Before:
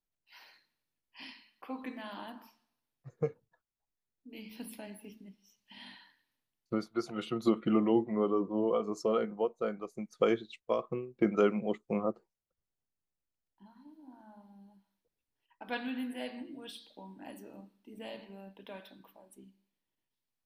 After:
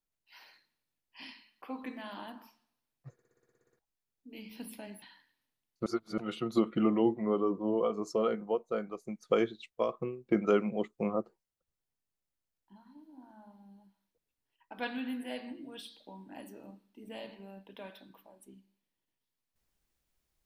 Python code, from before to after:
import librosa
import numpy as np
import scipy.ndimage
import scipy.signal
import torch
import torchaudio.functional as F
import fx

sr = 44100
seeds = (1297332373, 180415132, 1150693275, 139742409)

y = fx.edit(x, sr, fx.stutter_over(start_s=3.13, slice_s=0.06, count=11),
    fx.cut(start_s=5.02, length_s=0.9),
    fx.reverse_span(start_s=6.76, length_s=0.32), tone=tone)